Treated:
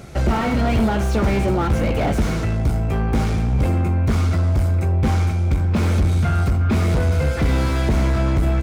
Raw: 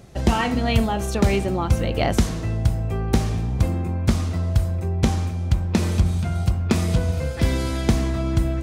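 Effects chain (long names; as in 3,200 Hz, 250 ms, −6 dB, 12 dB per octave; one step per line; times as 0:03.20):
hollow resonant body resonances 1,400/2,200 Hz, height 11 dB, ringing for 25 ms
soft clipping −21.5 dBFS, distortion −8 dB
double-tracking delay 14 ms −11 dB
on a send: single-tap delay 80 ms −22 dB
on the sum: slew-rate limiting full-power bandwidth 41 Hz
level +7.5 dB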